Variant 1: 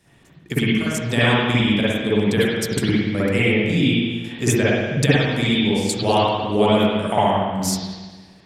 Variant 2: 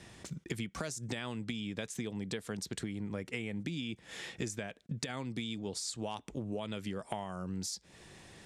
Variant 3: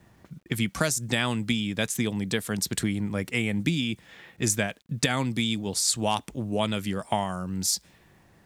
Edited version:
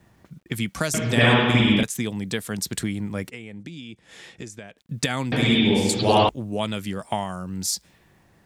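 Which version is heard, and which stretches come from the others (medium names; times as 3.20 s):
3
0.94–1.83 s: from 1
3.30–4.78 s: from 2
5.32–6.29 s: from 1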